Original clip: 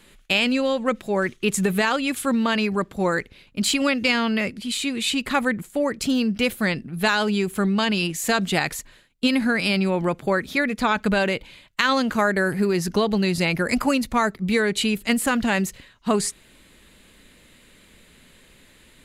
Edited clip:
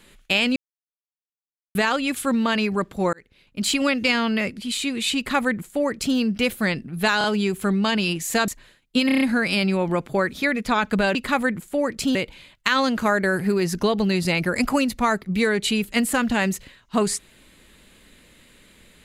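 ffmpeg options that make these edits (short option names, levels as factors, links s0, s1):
-filter_complex "[0:a]asplit=14[s0][s1][s2][s3][s4][s5][s6][s7][s8][s9][s10][s11][s12][s13];[s0]atrim=end=0.56,asetpts=PTS-STARTPTS,afade=t=out:st=0.556:d=0.004:c=hsin[s14];[s1]atrim=start=0.56:end=1.75,asetpts=PTS-STARTPTS,volume=0[s15];[s2]atrim=start=1.75:end=3.13,asetpts=PTS-STARTPTS,afade=t=in:d=0.004:c=hsin,afade=t=out:st=1.376:d=0.004:c=hsin[s16];[s3]atrim=start=3.13:end=7.212,asetpts=PTS-STARTPTS,afade=t=in:d=0.62[s17];[s4]atrim=start=7.178:end=7.212[s18];[s5]atrim=start=7.178:end=8.422[s19];[s6]atrim=start=8.758:end=9.372[s20];[s7]atrim=start=9.338:end=9.372[s21];[s8]atrim=start=9.338:end=9.372[s22];[s9]atrim=start=9.338:end=9.372[s23];[s10]atrim=start=9.338:end=9.372[s24];[s11]atrim=start=9.338:end=11.282[s25];[s12]atrim=start=5.168:end=6.172[s26];[s13]atrim=start=11.278[s27];[s14][s15][s16][s17]concat=n=4:v=0:a=1[s28];[s28][s18]acrossfade=d=0.004:c1=hsin:c2=hsin[s29];[s29][s19]acrossfade=d=0.004:c1=hsin:c2=hsin[s30];[s30][s20]acrossfade=d=0.004:c1=hsin:c2=hsin[s31];[s31][s21]acrossfade=d=0.004:c1=hsin:c2=hsin[s32];[s32][s22]acrossfade=d=0.004:c1=hsin:c2=hsin[s33];[s33][s23]acrossfade=d=0.004:c1=hsin:c2=hsin[s34];[s34][s24]acrossfade=d=0.004:c1=hsin:c2=hsin[s35];[s35][s25]acrossfade=d=0.004:c1=hsin:c2=hsin[s36];[s36][s26]acrossfade=d=0.004:c1=hsin:c2=hsin[s37];[s37][s27]acrossfade=d=0.004:c1=hsin:c2=hsin"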